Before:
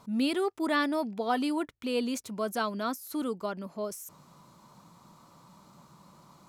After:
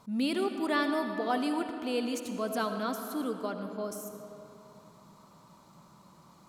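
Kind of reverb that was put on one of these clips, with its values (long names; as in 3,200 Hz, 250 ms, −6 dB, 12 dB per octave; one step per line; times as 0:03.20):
comb and all-pass reverb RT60 3.1 s, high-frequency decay 0.6×, pre-delay 35 ms, DRR 6 dB
level −2 dB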